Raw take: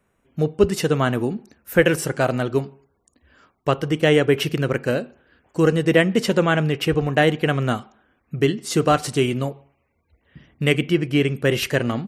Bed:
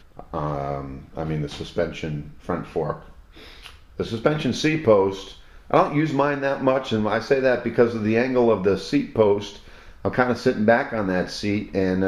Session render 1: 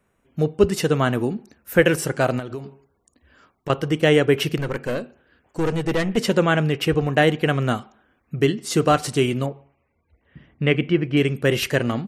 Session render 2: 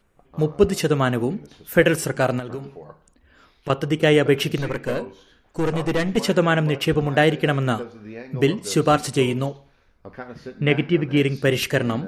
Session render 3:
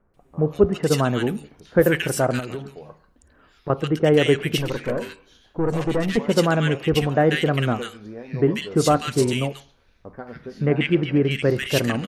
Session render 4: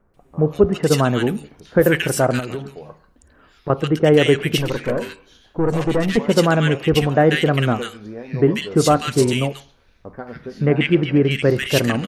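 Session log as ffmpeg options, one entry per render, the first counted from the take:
-filter_complex "[0:a]asettb=1/sr,asplit=3[a][b][c];[a]atrim=end=2.394[d];[b]atrim=start=2.39:end=3.7,asetpts=PTS-STARTPTS,afade=t=in:d=0.004:c=qsin,afade=t=out:st=1.306:d=0.004:c=qsin,acompressor=threshold=-26dB:ratio=16:attack=3.2:release=140:knee=1:detection=peak[e];[c]atrim=start=3.696[f];[d][e]acrossfade=d=0.004:c1=hsin:c2=qsin[g];[g][f]acrossfade=d=0.004:c1=qsin:c2=hsin,asplit=3[h][i][j];[h]afade=t=out:st=4.57:d=0.02[k];[i]aeval=exprs='(tanh(7.08*val(0)+0.45)-tanh(0.45))/7.08':c=same,afade=t=in:st=4.57:d=0.02,afade=t=out:st=6.16:d=0.02[l];[j]afade=t=in:st=6.16:d=0.02[m];[k][l][m]amix=inputs=3:normalize=0,asettb=1/sr,asplit=3[n][o][p];[n]atrim=end=9.464[q];[o]atrim=start=9.46:end=11.17,asetpts=PTS-STARTPTS,afade=t=in:d=0.004:c=qsin,afade=t=out:st=1.706:d=0.004:c=qsin,lowpass=2.9k[r];[p]atrim=start=11.166[s];[q][r]acrossfade=d=0.004:c1=hsin:c2=qsin[t];[t][s]acrossfade=d=0.004:c1=qsin:c2=hsin"
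-filter_complex "[1:a]volume=-16.5dB[a];[0:a][a]amix=inputs=2:normalize=0"
-filter_complex "[0:a]acrossover=split=1600[a][b];[b]adelay=140[c];[a][c]amix=inputs=2:normalize=0"
-af "volume=3.5dB,alimiter=limit=-3dB:level=0:latency=1"

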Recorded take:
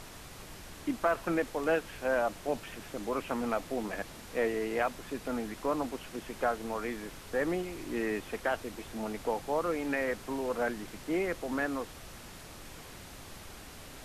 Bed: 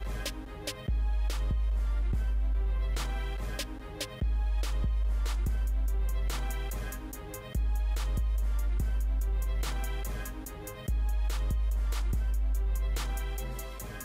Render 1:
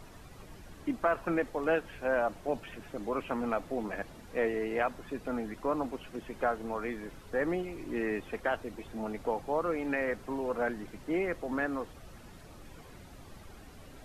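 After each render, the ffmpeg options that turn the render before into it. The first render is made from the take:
-af "afftdn=nr=10:nf=-48"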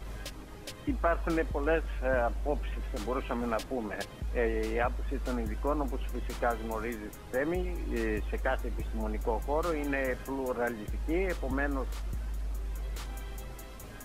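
-filter_complex "[1:a]volume=-6.5dB[a];[0:a][a]amix=inputs=2:normalize=0"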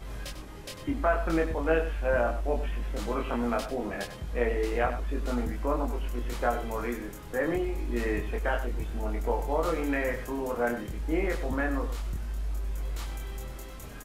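-filter_complex "[0:a]asplit=2[a][b];[b]adelay=25,volume=-2.5dB[c];[a][c]amix=inputs=2:normalize=0,aecho=1:1:97:0.282"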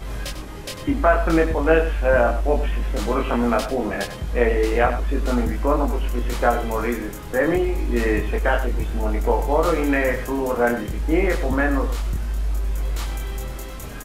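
-af "volume=9dB"

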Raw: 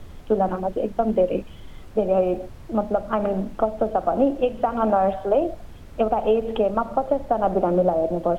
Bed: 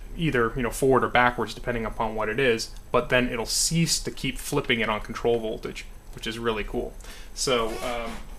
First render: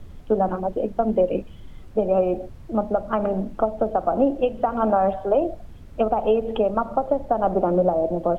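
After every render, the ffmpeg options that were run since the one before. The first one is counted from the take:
-af "afftdn=nr=6:nf=-41"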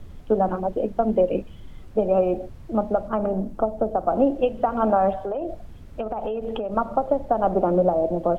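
-filter_complex "[0:a]asettb=1/sr,asplit=3[a][b][c];[a]atrim=end=3.084[d];[b]atrim=start=3.08:end=4.08,asetpts=PTS-STARTPTS,afade=t=in:d=0.004:c=qsin,afade=t=out:st=0.996:d=0.004:c=qsin,equalizer=f=2.5k:t=o:w=2.2:g=-7[e];[c]atrim=start=4.076[f];[d][e]acrossfade=d=0.004:c1=hsin:c2=qsin[g];[g][f]acrossfade=d=0.004:c1=qsin:c2=hsin,asettb=1/sr,asplit=3[h][i][j];[h]atrim=end=5.154[k];[i]atrim=start=5.15:end=6.72,asetpts=PTS-STARTPTS,afade=t=in:d=0.004:c=qsin,afade=t=out:st=1.566:d=0.004:c=qsin,acompressor=threshold=-24dB:ratio=6:attack=3.2:release=140:knee=1:detection=peak[l];[j]atrim=start=6.716[m];[k][l]acrossfade=d=0.004:c1=hsin:c2=qsin[n];[n][m]acrossfade=d=0.004:c1=qsin:c2=hsin"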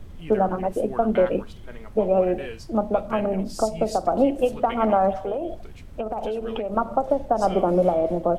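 -filter_complex "[1:a]volume=-15dB[a];[0:a][a]amix=inputs=2:normalize=0"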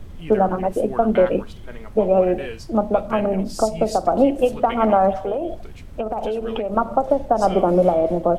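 -af "volume=3.5dB"

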